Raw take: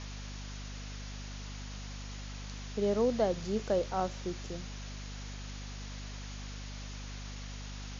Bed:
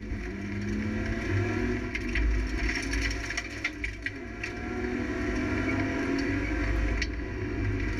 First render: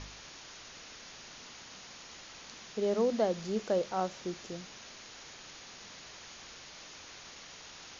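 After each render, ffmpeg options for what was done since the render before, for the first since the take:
-af "bandreject=f=50:t=h:w=4,bandreject=f=100:t=h:w=4,bandreject=f=150:t=h:w=4,bandreject=f=200:t=h:w=4,bandreject=f=250:t=h:w=4"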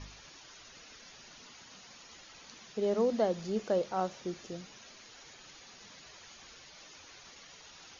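-af "afftdn=nr=9:nf=-51"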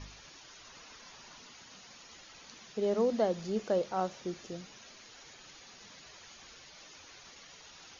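-filter_complex "[0:a]asettb=1/sr,asplit=3[s0][s1][s2];[s0]atrim=end=0.644[s3];[s1]atrim=start=0.64:end=1.4,asetpts=PTS-STARTPTS,afade=t=in:d=0.004:c=qsin,afade=t=out:st=0.756:d=0.004:c=qsin,equalizer=f=1000:w=2.5:g=7[s4];[s2]atrim=start=1.396[s5];[s3][s4]acrossfade=d=0.004:c1=hsin:c2=qsin[s6];[s6][s5]acrossfade=d=0.004:c1=qsin:c2=hsin"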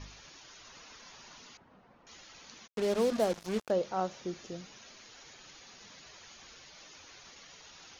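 -filter_complex "[0:a]asettb=1/sr,asplit=3[s0][s1][s2];[s0]atrim=end=1.574[s3];[s1]atrim=start=1.57:end=2.07,asetpts=PTS-STARTPTS,afade=t=in:d=0.004:c=qsin,afade=t=out:st=0.496:d=0.004:c=qsin,lowpass=1000[s4];[s2]atrim=start=2.066[s5];[s3][s4]acrossfade=d=0.004:c1=hsin:c2=qsin[s6];[s6][s5]acrossfade=d=0.004:c1=qsin:c2=hsin,asplit=3[s7][s8][s9];[s7]afade=t=out:st=2.66:d=0.02[s10];[s8]acrusher=bits=5:mix=0:aa=0.5,afade=t=in:st=2.66:d=0.02,afade=t=out:st=3.69:d=0.02[s11];[s9]afade=t=in:st=3.69:d=0.02[s12];[s10][s11][s12]amix=inputs=3:normalize=0"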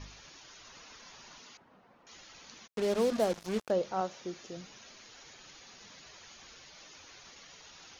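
-filter_complex "[0:a]asettb=1/sr,asplit=3[s0][s1][s2];[s0]atrim=end=1.384[s3];[s1]atrim=start=1.38:end=2.14,asetpts=PTS-STARTPTS,afade=t=in:d=0.004:c=qsin,afade=t=out:st=0.756:d=0.004:c=qsin,lowshelf=f=120:g=-9.5[s4];[s2]atrim=start=2.136[s5];[s3][s4]acrossfade=d=0.004:c1=hsin:c2=qsin[s6];[s6][s5]acrossfade=d=0.004:c1=qsin:c2=hsin,asettb=1/sr,asplit=3[s7][s8][s9];[s7]atrim=end=4.014[s10];[s8]atrim=start=4.01:end=4.57,asetpts=PTS-STARTPTS,afade=t=in:d=0.004:c=qsin,afade=t=out:st=0.556:d=0.004:c=qsin,lowshelf=f=190:g=-8[s11];[s9]atrim=start=4.566[s12];[s10][s11]acrossfade=d=0.004:c1=hsin:c2=qsin[s13];[s13][s12]acrossfade=d=0.004:c1=qsin:c2=hsin"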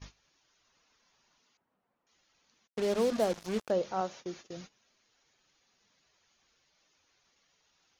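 -af "agate=range=0.112:threshold=0.00447:ratio=16:detection=peak"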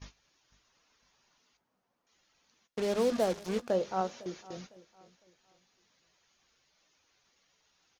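-filter_complex "[0:a]asplit=2[s0][s1];[s1]adelay=16,volume=0.2[s2];[s0][s2]amix=inputs=2:normalize=0,aecho=1:1:505|1010|1515:0.1|0.032|0.0102"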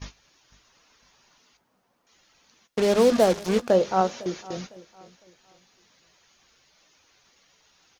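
-af "volume=3.16"

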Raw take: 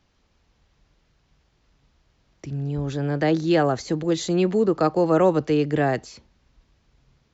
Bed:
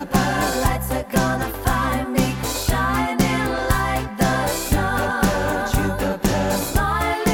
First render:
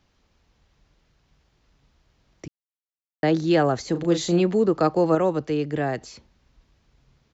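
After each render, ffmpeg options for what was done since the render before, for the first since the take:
-filter_complex "[0:a]asplit=3[s0][s1][s2];[s0]afade=t=out:st=3.94:d=0.02[s3];[s1]asplit=2[s4][s5];[s5]adelay=35,volume=0.473[s6];[s4][s6]amix=inputs=2:normalize=0,afade=t=in:st=3.94:d=0.02,afade=t=out:st=4.4:d=0.02[s7];[s2]afade=t=in:st=4.4:d=0.02[s8];[s3][s7][s8]amix=inputs=3:normalize=0,asplit=5[s9][s10][s11][s12][s13];[s9]atrim=end=2.48,asetpts=PTS-STARTPTS,afade=t=out:st=2.476:d=0.004:c=hsin[s14];[s10]atrim=start=2.48:end=3.23,asetpts=PTS-STARTPTS,volume=0[s15];[s11]atrim=start=3.23:end=5.152,asetpts=PTS-STARTPTS,afade=t=in:d=0.004:c=hsin[s16];[s12]atrim=start=5.148:end=6.012,asetpts=PTS-STARTPTS,volume=0.631[s17];[s13]atrim=start=6.008[s18];[s14][s15][s16]concat=n=3:v=0:a=1[s19];[s19][s17]acrossfade=d=0.004:c1=hsin:c2=hsin[s20];[s20][s18]acrossfade=d=0.004:c1=hsin:c2=hsin"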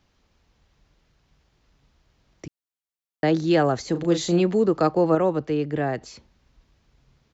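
-filter_complex "[0:a]asettb=1/sr,asplit=3[s0][s1][s2];[s0]atrim=end=4.914[s3];[s1]atrim=start=4.91:end=6.06,asetpts=PTS-STARTPTS,afade=t=in:d=0.004:c=qsin,afade=t=out:st=1.146:d=0.004:c=qsin,aemphasis=mode=reproduction:type=cd[s4];[s2]atrim=start=6.056[s5];[s3][s4]acrossfade=d=0.004:c1=hsin:c2=qsin[s6];[s6][s5]acrossfade=d=0.004:c1=qsin:c2=hsin"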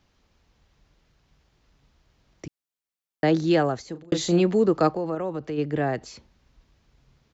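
-filter_complex "[0:a]asplit=3[s0][s1][s2];[s0]afade=t=out:st=4.93:d=0.02[s3];[s1]acompressor=threshold=0.0398:ratio=2.5:attack=3.2:release=140:knee=1:detection=peak,afade=t=in:st=4.93:d=0.02,afade=t=out:st=5.57:d=0.02[s4];[s2]afade=t=in:st=5.57:d=0.02[s5];[s3][s4][s5]amix=inputs=3:normalize=0,asplit=2[s6][s7];[s6]atrim=end=4.12,asetpts=PTS-STARTPTS,afade=t=out:st=3.47:d=0.65[s8];[s7]atrim=start=4.12,asetpts=PTS-STARTPTS,afade=t=in:d=0.004:c=hsin[s9];[s8][s9]concat=n=2:v=0:a=1"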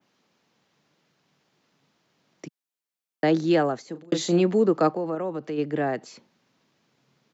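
-af "highpass=f=160:w=0.5412,highpass=f=160:w=1.3066,adynamicequalizer=threshold=0.00447:dfrequency=4900:dqfactor=0.77:tfrequency=4900:tqfactor=0.77:attack=5:release=100:ratio=0.375:range=2.5:mode=cutabove:tftype=bell"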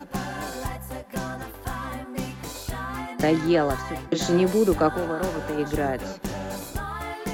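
-filter_complex "[1:a]volume=0.251[s0];[0:a][s0]amix=inputs=2:normalize=0"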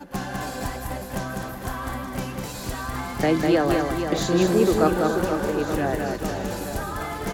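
-af "aecho=1:1:200|480|872|1421|2189:0.631|0.398|0.251|0.158|0.1"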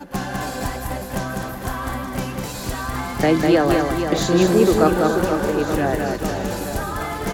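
-af "volume=1.58,alimiter=limit=0.708:level=0:latency=1"

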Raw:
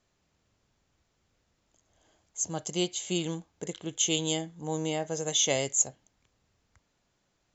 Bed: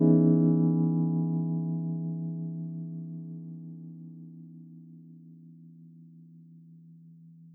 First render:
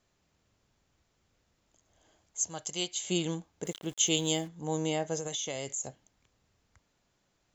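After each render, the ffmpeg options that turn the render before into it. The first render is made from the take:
-filter_complex "[0:a]asettb=1/sr,asplit=3[s0][s1][s2];[s0]atrim=end=2.444[s3];[s1]atrim=start=2.44:end=3.04,asetpts=PTS-STARTPTS,afade=t=in:d=0.004:c=qsin,afade=t=out:st=0.596:d=0.004:c=qsin,equalizer=f=220:w=0.35:g=-10[s4];[s2]atrim=start=3.036[s5];[s3][s4]acrossfade=d=0.004:c1=hsin:c2=qsin[s6];[s6][s5]acrossfade=d=0.004:c1=qsin:c2=hsin,asplit=3[s7][s8][s9];[s7]afade=t=out:st=3.64:d=0.02[s10];[s8]aeval=exprs='val(0)*gte(abs(val(0)),0.00376)':c=same,afade=t=in:st=3.64:d=0.02,afade=t=out:st=4.47:d=0.02[s11];[s9]afade=t=in:st=4.47:d=0.02[s12];[s10][s11][s12]amix=inputs=3:normalize=0,asettb=1/sr,asplit=3[s13][s14][s15];[s13]atrim=end=5.174[s16];[s14]atrim=start=5.17:end=5.84,asetpts=PTS-STARTPTS,afade=t=in:d=0.004:c=qsin,afade=t=out:st=0.666:d=0.004:c=qsin,acompressor=threshold=0.0282:ratio=12:attack=3.2:release=140:knee=1:detection=peak[s17];[s15]atrim=start=5.836[s18];[s16][s17]acrossfade=d=0.004:c1=hsin:c2=qsin[s19];[s19][s18]acrossfade=d=0.004:c1=qsin:c2=hsin"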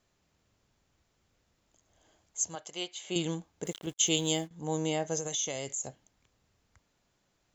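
-filter_complex "[0:a]asettb=1/sr,asplit=3[s0][s1][s2];[s0]atrim=end=2.554[s3];[s1]atrim=start=2.55:end=3.16,asetpts=PTS-STARTPTS,afade=t=in:d=0.004:c=qsin,afade=t=out:st=0.606:d=0.004:c=qsin,bass=f=250:g=-12,treble=f=4000:g=-11[s4];[s2]atrim=start=3.156[s5];[s3][s4]acrossfade=d=0.004:c1=hsin:c2=qsin[s6];[s6][s5]acrossfade=d=0.004:c1=qsin:c2=hsin,asettb=1/sr,asplit=3[s7][s8][s9];[s7]atrim=end=3.864[s10];[s8]atrim=start=3.86:end=4.51,asetpts=PTS-STARTPTS,afade=t=in:d=0.004:c=qsin,afade=t=out:st=0.646:d=0.004:c=qsin,agate=range=0.0224:threshold=0.0178:ratio=3:release=100:detection=peak[s11];[s9]atrim=start=4.506[s12];[s10][s11]acrossfade=d=0.004:c1=hsin:c2=qsin[s13];[s13][s12]acrossfade=d=0.004:c1=qsin:c2=hsin,asettb=1/sr,asplit=3[s14][s15][s16];[s14]atrim=end=5.054[s17];[s15]atrim=start=5.05:end=5.59,asetpts=PTS-STARTPTS,afade=t=in:d=0.004:c=qsin,afade=t=out:st=0.536:d=0.004:c=qsin,equalizer=f=6200:t=o:w=0.22:g=6[s18];[s16]atrim=start=5.586[s19];[s17][s18]acrossfade=d=0.004:c1=hsin:c2=qsin[s20];[s20][s19]acrossfade=d=0.004:c1=qsin:c2=hsin"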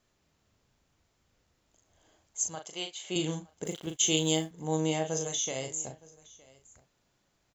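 -filter_complex "[0:a]asplit=2[s0][s1];[s1]adelay=38,volume=0.473[s2];[s0][s2]amix=inputs=2:normalize=0,aecho=1:1:915:0.0708"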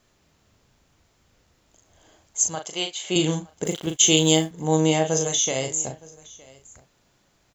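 -af "volume=2.99,alimiter=limit=0.708:level=0:latency=1"

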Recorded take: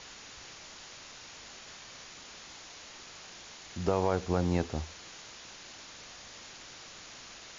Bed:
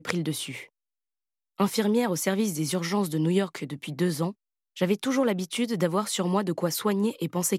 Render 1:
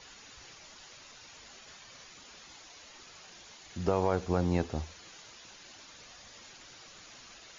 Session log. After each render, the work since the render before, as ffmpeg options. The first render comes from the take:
-af "afftdn=nr=8:nf=-50"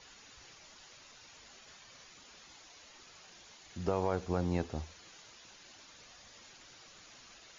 -af "volume=0.631"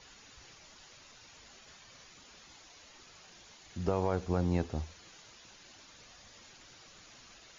-af "lowshelf=f=230:g=4.5"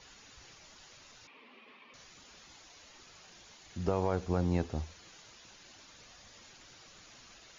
-filter_complex "[0:a]asettb=1/sr,asplit=3[s0][s1][s2];[s0]atrim=end=1.274[s3];[s1]atrim=start=1.27:end=1.94,asetpts=PTS-STARTPTS,afade=t=in:d=0.004:c=qsin,afade=t=out:st=0.666:d=0.004:c=qsin,highpass=f=220:w=0.5412,highpass=f=220:w=1.3066,equalizer=f=240:t=q:w=4:g=10,equalizer=f=440:t=q:w=4:g=6,equalizer=f=690:t=q:w=4:g=-5,equalizer=f=1100:t=q:w=4:g=7,equalizer=f=1500:t=q:w=4:g=-9,equalizer=f=2400:t=q:w=4:g=7,lowpass=f=3100:w=0.5412,lowpass=f=3100:w=1.3066[s4];[s2]atrim=start=1.936[s5];[s3][s4]acrossfade=d=0.004:c1=hsin:c2=qsin[s6];[s6][s5]acrossfade=d=0.004:c1=qsin:c2=hsin"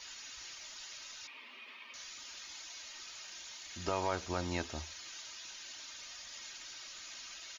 -af "tiltshelf=f=900:g=-9,aecho=1:1:3.2:0.39"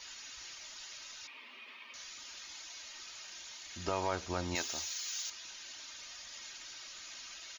-filter_complex "[0:a]asettb=1/sr,asplit=3[s0][s1][s2];[s0]atrim=end=4.554[s3];[s1]atrim=start=4.55:end=5.3,asetpts=PTS-STARTPTS,afade=t=in:d=0.004:c=qsin,afade=t=out:st=0.746:d=0.004:c=qsin,aemphasis=mode=production:type=riaa[s4];[s2]atrim=start=5.296[s5];[s3][s4]acrossfade=d=0.004:c1=hsin:c2=qsin[s6];[s6][s5]acrossfade=d=0.004:c1=qsin:c2=hsin"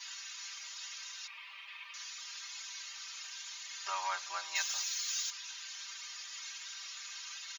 -af "highpass=f=930:w=0.5412,highpass=f=930:w=1.3066,aecho=1:1:5.1:0.98"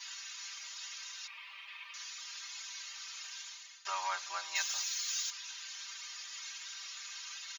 -filter_complex "[0:a]asplit=2[s0][s1];[s0]atrim=end=3.85,asetpts=PTS-STARTPTS,afade=t=out:st=3.39:d=0.46:silence=0.11885[s2];[s1]atrim=start=3.85,asetpts=PTS-STARTPTS,afade=t=in:d=0.004:c=hsin:silence=0.11885[s3];[s2][s3]concat=n=2:v=0:a=1"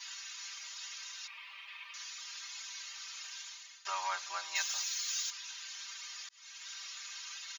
-filter_complex "[0:a]asplit=2[s0][s1];[s0]atrim=end=6.29,asetpts=PTS-STARTPTS,afade=t=out:st=6.286:d=0.004:c=hsin[s2];[s1]atrim=start=6.29,asetpts=PTS-STARTPTS,afade=t=in:d=0.42[s3];[s2][s3]concat=n=2:v=0:a=1"

